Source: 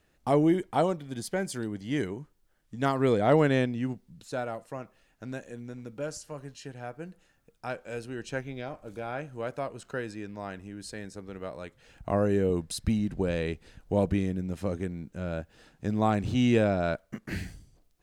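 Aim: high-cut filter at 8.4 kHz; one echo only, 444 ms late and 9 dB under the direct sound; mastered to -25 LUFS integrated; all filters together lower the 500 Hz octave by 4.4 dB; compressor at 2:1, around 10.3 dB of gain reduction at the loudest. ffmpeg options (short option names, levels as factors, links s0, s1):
-af "lowpass=8400,equalizer=f=500:t=o:g=-5.5,acompressor=threshold=0.01:ratio=2,aecho=1:1:444:0.355,volume=5.96"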